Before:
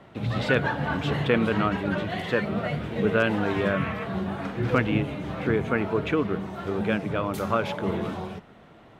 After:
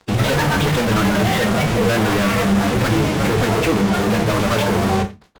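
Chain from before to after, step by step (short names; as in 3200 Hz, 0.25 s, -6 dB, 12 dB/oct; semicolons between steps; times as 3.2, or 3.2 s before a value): downsampling 8000 Hz; fuzz box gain 45 dB, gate -42 dBFS; on a send at -4.5 dB: reverb RT60 0.40 s, pre-delay 15 ms; on the sum: pitch shift +0.5 st; in parallel at -5.5 dB: soft clip -14.5 dBFS, distortion -11 dB; on the sum: time stretch by phase-locked vocoder 0.6×; gain -5.5 dB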